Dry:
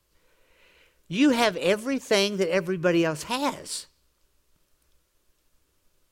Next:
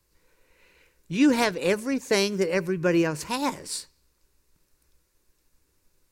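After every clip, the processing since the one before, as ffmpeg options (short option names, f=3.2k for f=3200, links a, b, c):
-af "equalizer=f=630:t=o:w=0.33:g=-7,equalizer=f=1.25k:t=o:w=0.33:g=-5,equalizer=f=3.15k:t=o:w=0.33:g=-9,volume=1dB"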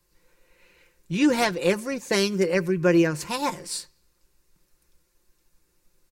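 -af "aecho=1:1:5.7:0.52"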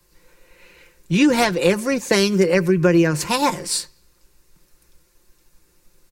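-filter_complex "[0:a]acrossover=split=160[a][b];[b]acompressor=threshold=-22dB:ratio=5[c];[a][c]amix=inputs=2:normalize=0,volume=9dB"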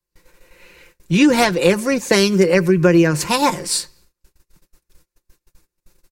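-af "agate=range=-26dB:threshold=-51dB:ratio=16:detection=peak,volume=2.5dB"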